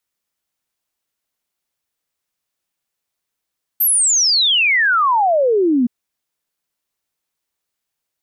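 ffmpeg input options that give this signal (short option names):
-f lavfi -i "aevalsrc='0.266*clip(min(t,2.07-t)/0.01,0,1)*sin(2*PI*13000*2.07/log(230/13000)*(exp(log(230/13000)*t/2.07)-1))':d=2.07:s=44100"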